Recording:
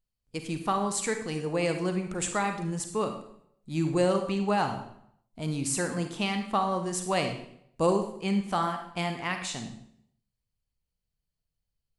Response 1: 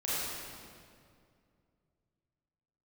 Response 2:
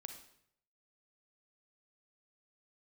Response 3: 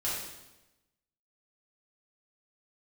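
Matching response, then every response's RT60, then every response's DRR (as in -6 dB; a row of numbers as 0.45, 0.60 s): 2; 2.3, 0.70, 1.0 s; -10.0, 6.0, -8.5 dB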